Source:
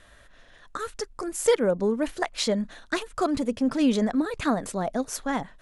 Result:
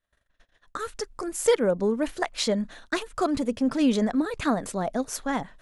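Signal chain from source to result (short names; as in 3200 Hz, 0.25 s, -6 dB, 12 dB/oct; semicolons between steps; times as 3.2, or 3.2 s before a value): gate -49 dBFS, range -31 dB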